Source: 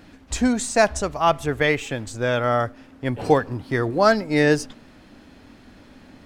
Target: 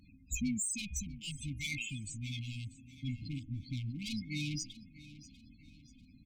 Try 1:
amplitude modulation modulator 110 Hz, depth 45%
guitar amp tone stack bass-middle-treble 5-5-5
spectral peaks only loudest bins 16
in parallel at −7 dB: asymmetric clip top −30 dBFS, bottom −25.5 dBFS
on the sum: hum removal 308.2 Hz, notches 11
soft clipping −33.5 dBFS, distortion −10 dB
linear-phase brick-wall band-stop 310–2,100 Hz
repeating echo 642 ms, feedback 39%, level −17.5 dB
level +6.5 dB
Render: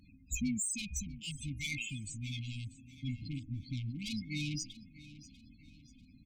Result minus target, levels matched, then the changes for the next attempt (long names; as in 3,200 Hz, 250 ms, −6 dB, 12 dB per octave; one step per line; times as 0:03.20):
asymmetric clip: distortion −12 dB
change: asymmetric clip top −41 dBFS, bottom −25.5 dBFS